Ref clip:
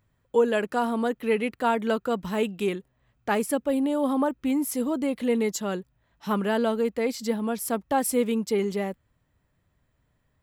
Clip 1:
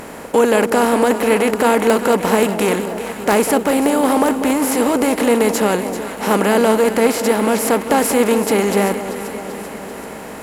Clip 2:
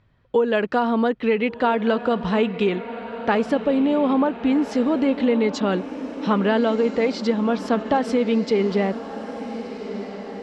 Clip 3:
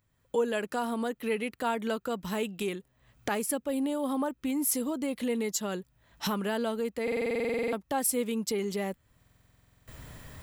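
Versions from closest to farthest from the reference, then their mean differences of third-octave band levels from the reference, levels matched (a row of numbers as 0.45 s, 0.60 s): 3, 2, 1; 4.0 dB, 6.5 dB, 10.5 dB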